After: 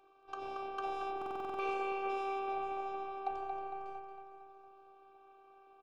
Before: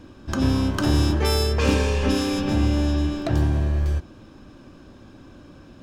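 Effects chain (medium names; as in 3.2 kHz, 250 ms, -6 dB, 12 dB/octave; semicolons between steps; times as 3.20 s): vowel filter a; de-hum 49.03 Hz, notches 7; robot voice 391 Hz; on a send: feedback delay 228 ms, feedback 54%, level -8 dB; on the sum: buffer glitch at 1.17 s, samples 2048, times 8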